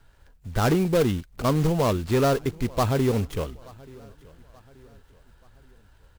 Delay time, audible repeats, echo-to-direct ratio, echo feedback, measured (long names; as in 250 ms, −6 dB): 880 ms, 2, −22.5 dB, 44%